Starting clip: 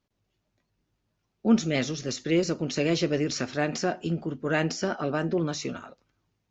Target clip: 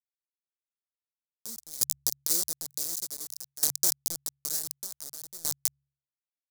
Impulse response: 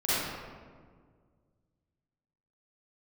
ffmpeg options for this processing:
-filter_complex "[0:a]highpass=f=44:p=1,asplit=2[a][b];[b]aecho=0:1:94|188|282:0.112|0.0359|0.0115[c];[a][c]amix=inputs=2:normalize=0,acrusher=bits=3:mix=0:aa=0.000001,anlmdn=6.31,bandreject=f=69.33:t=h:w=4,bandreject=f=138.66:t=h:w=4,acompressor=threshold=-39dB:ratio=2,aexciter=amount=14.8:drive=8.7:freq=4.4k,aeval=exprs='val(0)*pow(10,-20*if(lt(mod(0.55*n/s,1),2*abs(0.55)/1000),1-mod(0.55*n/s,1)/(2*abs(0.55)/1000),(mod(0.55*n/s,1)-2*abs(0.55)/1000)/(1-2*abs(0.55)/1000))/20)':c=same,volume=-5dB"

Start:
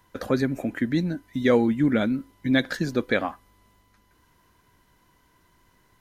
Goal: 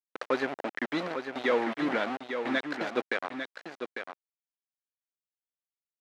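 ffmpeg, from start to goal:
-af "aemphasis=mode=production:type=75kf,alimiter=limit=-11dB:level=0:latency=1:release=399,aeval=exprs='val(0)*gte(abs(val(0)),0.0531)':c=same,highpass=450,lowpass=2.4k,aecho=1:1:849:0.422"

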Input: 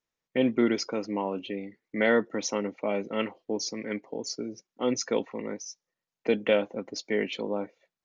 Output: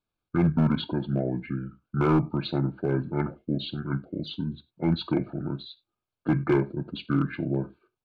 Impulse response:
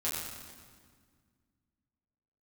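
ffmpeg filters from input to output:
-filter_complex "[0:a]lowshelf=f=190:g=9,asplit=2[a][b];[1:a]atrim=start_sample=2205,atrim=end_sample=3969,asetrate=38367,aresample=44100[c];[b][c]afir=irnorm=-1:irlink=0,volume=-16dB[d];[a][d]amix=inputs=2:normalize=0,asetrate=29433,aresample=44100,atempo=1.49831,asoftclip=type=hard:threshold=-16dB,asuperstop=centerf=1900:order=8:qfactor=5.7,highshelf=f=5k:g=-11"

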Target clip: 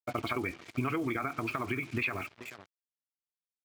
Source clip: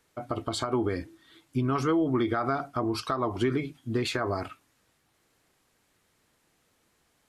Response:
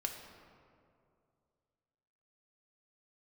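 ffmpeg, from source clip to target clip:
-filter_complex "[0:a]lowpass=f=2.4k:t=q:w=9.8,aecho=1:1:870:0.0841,asplit=2[a][b];[1:a]atrim=start_sample=2205,lowpass=4.2k[c];[b][c]afir=irnorm=-1:irlink=0,volume=-15dB[d];[a][d]amix=inputs=2:normalize=0,acrusher=bits=6:mix=0:aa=0.5,highpass=83,atempo=2,acompressor=threshold=-28dB:ratio=6,adynamicequalizer=threshold=0.00447:dfrequency=530:dqfactor=1:tfrequency=530:tqfactor=1:attack=5:release=100:ratio=0.375:range=3.5:mode=cutabove:tftype=bell"

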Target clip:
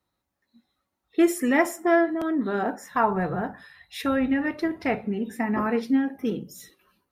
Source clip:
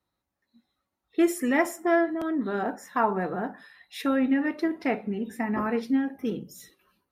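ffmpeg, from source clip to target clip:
-filter_complex "[0:a]asettb=1/sr,asplit=3[a][b][c];[a]atrim=end=2.914[d];[b]atrim=start=2.91:end=5.04,asetpts=PTS-STARTPTS,afade=t=in:d=0.004:c=qsin,afade=t=out:st=2.126:d=0.004:c=qsin,lowshelf=f=160:t=q:w=1.5:g=12.5[e];[c]atrim=start=5.036[f];[d][e]acrossfade=d=0.004:c1=hsin:c2=qsin[g];[g][f]acrossfade=d=0.004:c1=qsin:c2=hsin,volume=2.5dB"

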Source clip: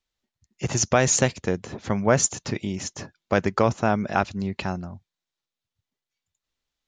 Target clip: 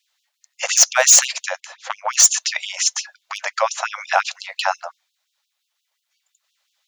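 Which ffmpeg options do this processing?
-filter_complex "[0:a]asettb=1/sr,asplit=3[a][b][c];[a]atrim=end=1.604[d];[b]atrim=start=1.6:end=2.07,asetpts=PTS-STARTPTS,afade=t=in:d=0.004:c=qsin,afade=t=out:st=0.466:d=0.004:c=qsin,aeval=exprs='0.335*(cos(1*acos(clip(val(0)/0.335,-1,1)))-cos(1*PI/2))+0.075*(cos(3*acos(clip(val(0)/0.335,-1,1)))-cos(3*PI/2))':c=same[e];[c]atrim=start=2.066[f];[d][e]acrossfade=d=0.004:c1=hsin:c2=qsin[g];[g][f]acrossfade=d=0.004:c1=qsin:c2=hsin,acrossover=split=1900[h][i];[i]volume=21.5dB,asoftclip=hard,volume=-21.5dB[j];[h][j]amix=inputs=2:normalize=0,alimiter=level_in=15.5dB:limit=-1dB:release=50:level=0:latency=1,afftfilt=real='re*gte(b*sr/1024,500*pow(2700/500,0.5+0.5*sin(2*PI*5.7*pts/sr)))':imag='im*gte(b*sr/1024,500*pow(2700/500,0.5+0.5*sin(2*PI*5.7*pts/sr)))':win_size=1024:overlap=0.75"

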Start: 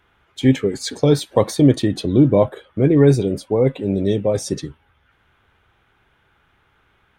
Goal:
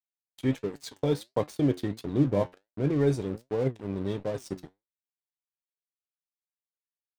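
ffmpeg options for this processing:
-af "aeval=exprs='sgn(val(0))*max(abs(val(0))-0.0316,0)':c=same,flanger=delay=6.6:depth=4.6:regen=73:speed=1.4:shape=sinusoidal,volume=-6.5dB"

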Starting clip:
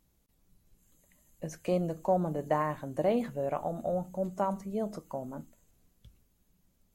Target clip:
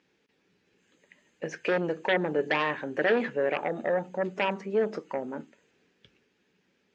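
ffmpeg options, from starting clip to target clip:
-af "aeval=exprs='0.15*(cos(1*acos(clip(val(0)/0.15,-1,1)))-cos(1*PI/2))+0.0596*(cos(5*acos(clip(val(0)/0.15,-1,1)))-cos(5*PI/2))+0.0168*(cos(6*acos(clip(val(0)/0.15,-1,1)))-cos(6*PI/2))':c=same,highpass=320,equalizer=f=420:t=q:w=4:g=6,equalizer=f=660:t=q:w=4:g=-9,equalizer=f=1.1k:t=q:w=4:g=-6,equalizer=f=1.7k:t=q:w=4:g=7,equalizer=f=2.5k:t=q:w=4:g=6,equalizer=f=4.1k:t=q:w=4:g=-4,lowpass=f=4.8k:w=0.5412,lowpass=f=4.8k:w=1.3066"

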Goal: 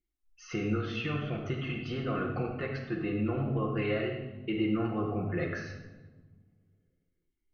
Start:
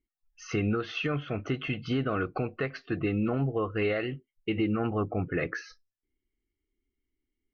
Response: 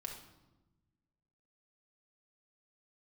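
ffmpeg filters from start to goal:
-filter_complex "[0:a]asettb=1/sr,asplit=3[a][b][c];[a]atrim=end=4.804[d];[b]atrim=start=4.8:end=5.52,asetpts=PTS-STARTPTS,afade=t=in:d=0.004:c=qsin,afade=t=out:st=0.716:d=0.004:c=qsin,highshelf=f=3.5k:t=q:w=1.5:g=6.5[e];[c]atrim=start=5.516[f];[d][e]acrossfade=d=0.004:c1=hsin:c2=qsin[g];[g][f]acrossfade=d=0.004:c1=qsin:c2=hsin[h];[1:a]atrim=start_sample=2205,asetrate=33516,aresample=44100[i];[h][i]afir=irnorm=-1:irlink=0,volume=-2.5dB"

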